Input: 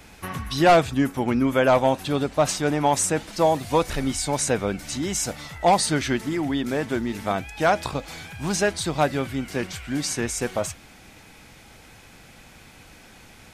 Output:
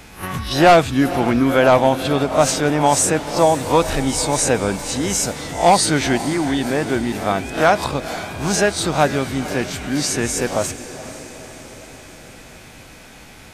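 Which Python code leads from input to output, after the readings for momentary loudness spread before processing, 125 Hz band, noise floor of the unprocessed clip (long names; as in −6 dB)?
11 LU, +5.5 dB, −49 dBFS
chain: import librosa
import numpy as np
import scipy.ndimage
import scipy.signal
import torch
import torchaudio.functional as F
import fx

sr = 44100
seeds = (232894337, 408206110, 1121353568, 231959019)

y = fx.spec_swells(x, sr, rise_s=0.31)
y = fx.echo_diffused(y, sr, ms=481, feedback_pct=61, wet_db=-14.0)
y = y * librosa.db_to_amplitude(4.5)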